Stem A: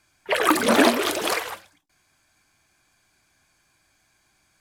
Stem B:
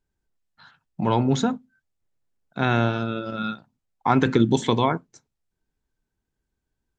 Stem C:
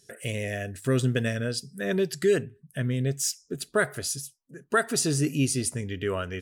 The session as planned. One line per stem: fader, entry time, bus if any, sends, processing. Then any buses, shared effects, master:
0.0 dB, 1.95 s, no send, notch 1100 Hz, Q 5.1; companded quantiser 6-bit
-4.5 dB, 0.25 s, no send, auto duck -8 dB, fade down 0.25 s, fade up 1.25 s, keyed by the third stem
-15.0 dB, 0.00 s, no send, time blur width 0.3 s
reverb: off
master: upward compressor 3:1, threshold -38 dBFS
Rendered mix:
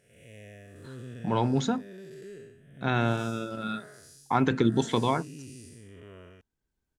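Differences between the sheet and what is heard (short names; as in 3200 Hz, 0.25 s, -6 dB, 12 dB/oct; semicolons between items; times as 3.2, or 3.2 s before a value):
stem A: muted; stem B -4.5 dB -> +3.0 dB; master: missing upward compressor 3:1, threshold -38 dBFS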